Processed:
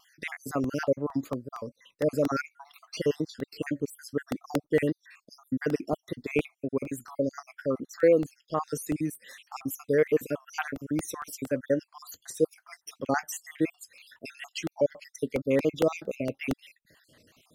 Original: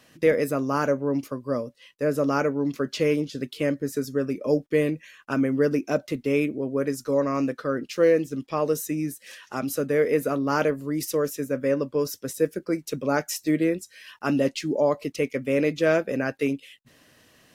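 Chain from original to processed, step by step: random spectral dropouts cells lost 61%; vibrato 4.1 Hz 46 cents; crackling interface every 0.23 s, samples 64, repeat, from 0.64; gain -1 dB

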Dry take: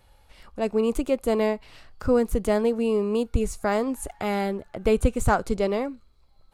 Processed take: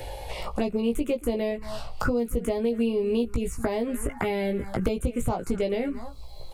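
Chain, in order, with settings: on a send: echo 0.227 s -22 dB; on the sum: compressor 12:1, threshold -29 dBFS, peak gain reduction 16 dB; envelope phaser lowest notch 200 Hz, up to 1700 Hz, full sweep at -27.5 dBFS; doubler 17 ms -4 dB; three-band squash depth 70%; gain +7.5 dB

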